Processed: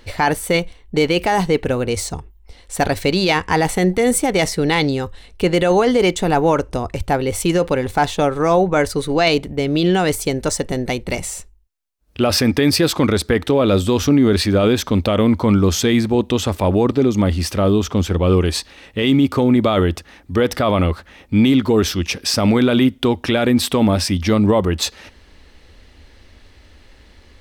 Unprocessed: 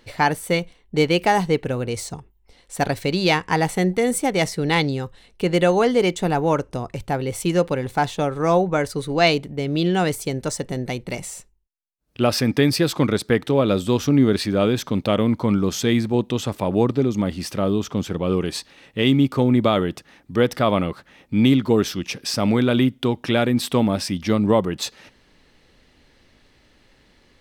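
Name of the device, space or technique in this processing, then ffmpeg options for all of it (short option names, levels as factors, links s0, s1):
car stereo with a boomy subwoofer: -af "lowshelf=f=100:t=q:w=3:g=6,alimiter=limit=0.237:level=0:latency=1:release=12,volume=2.11"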